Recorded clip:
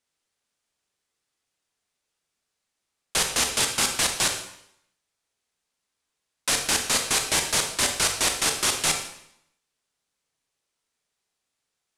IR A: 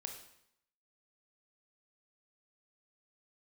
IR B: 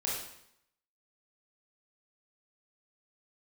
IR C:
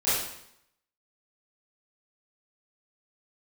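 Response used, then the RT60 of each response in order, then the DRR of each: A; 0.75 s, 0.75 s, 0.75 s; 3.5 dB, -5.0 dB, -14.5 dB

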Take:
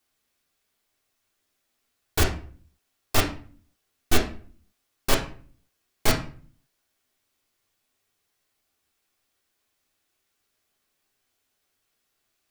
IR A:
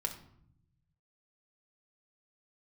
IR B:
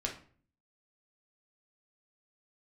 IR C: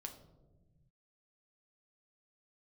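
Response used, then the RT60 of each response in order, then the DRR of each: B; 0.65 s, 0.45 s, 1.2 s; 3.5 dB, -1.0 dB, 3.5 dB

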